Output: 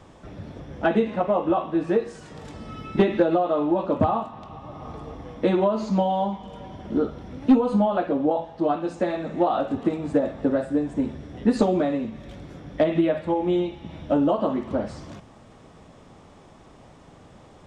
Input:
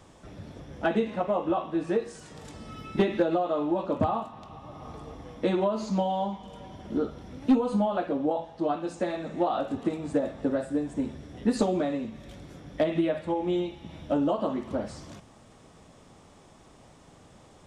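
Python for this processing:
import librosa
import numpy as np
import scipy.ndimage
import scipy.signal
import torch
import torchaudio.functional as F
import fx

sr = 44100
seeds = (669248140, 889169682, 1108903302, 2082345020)

y = fx.lowpass(x, sr, hz=3200.0, slope=6)
y = y * librosa.db_to_amplitude(5.0)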